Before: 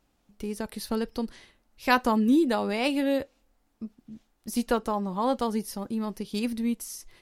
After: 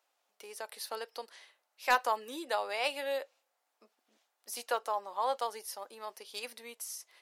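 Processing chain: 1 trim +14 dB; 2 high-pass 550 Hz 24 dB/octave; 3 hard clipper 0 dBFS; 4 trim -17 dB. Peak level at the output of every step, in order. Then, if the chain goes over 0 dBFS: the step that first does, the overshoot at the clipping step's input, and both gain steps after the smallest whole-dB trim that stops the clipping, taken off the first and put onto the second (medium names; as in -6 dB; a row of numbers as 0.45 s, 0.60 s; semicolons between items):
+7.0 dBFS, +7.0 dBFS, 0.0 dBFS, -17.0 dBFS; step 1, 7.0 dB; step 1 +7 dB, step 4 -10 dB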